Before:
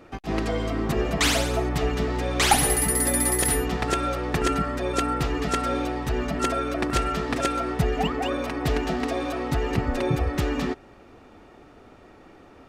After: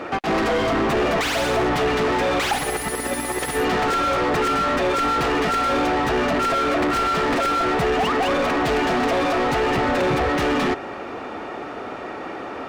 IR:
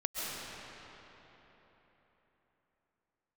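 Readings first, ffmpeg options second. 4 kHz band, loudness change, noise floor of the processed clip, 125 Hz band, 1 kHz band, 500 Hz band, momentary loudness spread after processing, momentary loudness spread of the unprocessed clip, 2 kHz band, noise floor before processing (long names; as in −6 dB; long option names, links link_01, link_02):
+3.0 dB, +4.0 dB, −32 dBFS, −3.0 dB, +7.5 dB, +6.5 dB, 12 LU, 7 LU, +6.5 dB, −50 dBFS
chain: -filter_complex "[0:a]asplit=2[link_01][link_02];[link_02]highpass=frequency=720:poles=1,volume=37dB,asoftclip=type=tanh:threshold=-5.5dB[link_03];[link_01][link_03]amix=inputs=2:normalize=0,lowpass=frequency=1700:poles=1,volume=-6dB,volume=-6.5dB"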